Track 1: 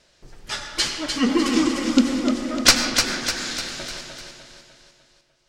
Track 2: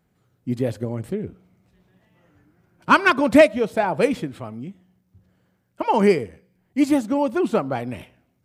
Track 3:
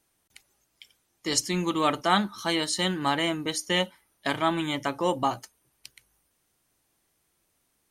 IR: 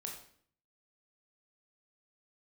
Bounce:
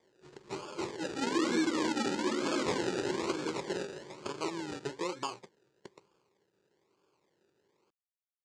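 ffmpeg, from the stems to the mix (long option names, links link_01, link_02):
-filter_complex "[0:a]lowpass=1500,asplit=2[link_01][link_02];[link_02]adelay=10.6,afreqshift=-0.48[link_03];[link_01][link_03]amix=inputs=2:normalize=1,volume=-1.5dB[link_04];[2:a]acompressor=threshold=-33dB:ratio=6,volume=-1dB[link_05];[link_04][link_05]amix=inputs=2:normalize=0,acrusher=samples=32:mix=1:aa=0.000001:lfo=1:lforange=19.2:lforate=1.1,highpass=180,equalizer=frequency=250:width_type=q:width=4:gain=-8,equalizer=frequency=390:width_type=q:width=4:gain=9,equalizer=frequency=690:width_type=q:width=4:gain=-9,equalizer=frequency=1000:width_type=q:width=4:gain=4,equalizer=frequency=4500:width_type=q:width=4:gain=4,equalizer=frequency=7200:width_type=q:width=4:gain=4,lowpass=frequency=7800:width=0.5412,lowpass=frequency=7800:width=1.3066,alimiter=limit=-18.5dB:level=0:latency=1:release=85"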